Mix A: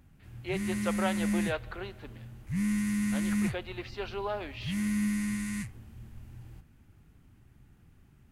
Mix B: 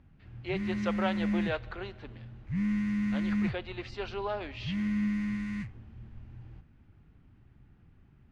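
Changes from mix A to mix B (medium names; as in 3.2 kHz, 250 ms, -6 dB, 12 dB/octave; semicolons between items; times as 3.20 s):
speech: remove distance through air 220 m; master: add distance through air 230 m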